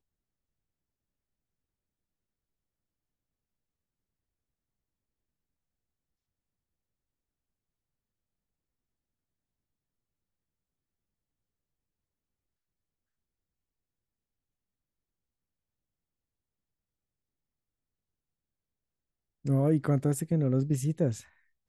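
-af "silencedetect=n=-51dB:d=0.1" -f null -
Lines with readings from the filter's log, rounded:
silence_start: 0.00
silence_end: 19.45 | silence_duration: 19.45
silence_start: 21.29
silence_end: 21.68 | silence_duration: 0.40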